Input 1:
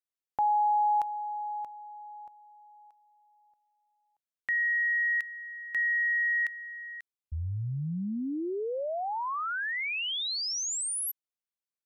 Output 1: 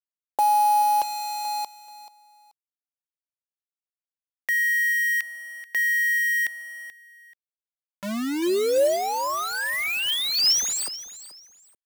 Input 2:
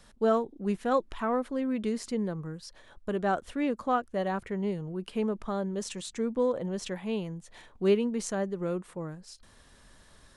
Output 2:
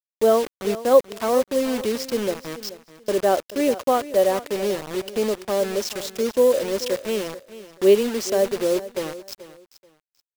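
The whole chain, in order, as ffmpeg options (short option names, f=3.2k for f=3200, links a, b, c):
-af "highpass=f=230:w=0.5412,highpass=f=230:w=1.3066,equalizer=f=370:t=q:w=4:g=5,equalizer=f=560:t=q:w=4:g=10,equalizer=f=1.4k:t=q:w=4:g=-6,equalizer=f=3.1k:t=q:w=4:g=3,equalizer=f=5.2k:t=q:w=4:g=10,lowpass=f=7.7k:w=0.5412,lowpass=f=7.7k:w=1.3066,acrusher=bits=5:mix=0:aa=0.000001,aecho=1:1:433|866:0.168|0.0386,volume=5dB"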